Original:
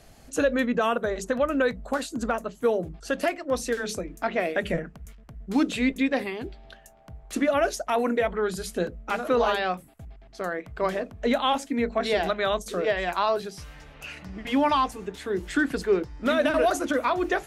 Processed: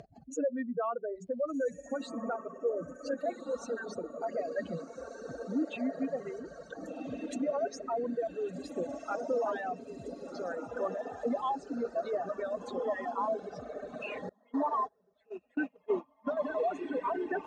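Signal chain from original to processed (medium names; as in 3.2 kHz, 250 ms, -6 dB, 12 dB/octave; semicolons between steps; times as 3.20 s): spectral contrast enhancement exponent 2.5; upward compressor, threshold -26 dBFS; high-pass 170 Hz 12 dB/octave; distance through air 71 m; echo that smears into a reverb 1572 ms, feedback 67%, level -5 dB; reverb removal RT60 1.9 s; 14.29–16.37 s: gate -24 dBFS, range -30 dB; trim -7.5 dB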